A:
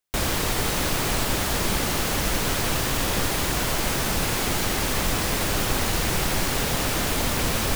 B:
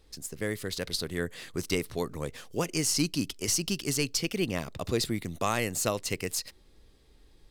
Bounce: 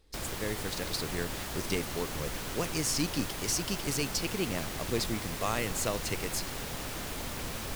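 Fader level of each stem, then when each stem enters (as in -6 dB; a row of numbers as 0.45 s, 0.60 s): -13.5 dB, -3.5 dB; 0.00 s, 0.00 s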